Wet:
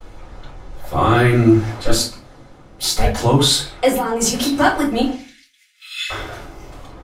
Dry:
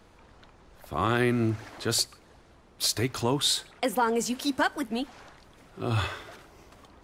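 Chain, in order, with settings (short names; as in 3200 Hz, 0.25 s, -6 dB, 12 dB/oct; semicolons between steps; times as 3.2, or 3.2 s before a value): in parallel at 0 dB: limiter -19 dBFS, peak gain reduction 7 dB; 1.73–3.2 on the sum: ring modulator 110 Hz -> 390 Hz; 3.95–4.59 negative-ratio compressor -25 dBFS, ratio -1; 5.11–6.1 steep high-pass 1900 Hz 48 dB/oct; speakerphone echo 0.13 s, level -17 dB; shoebox room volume 120 m³, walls furnished, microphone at 5 m; expander -42 dBFS; gain -4 dB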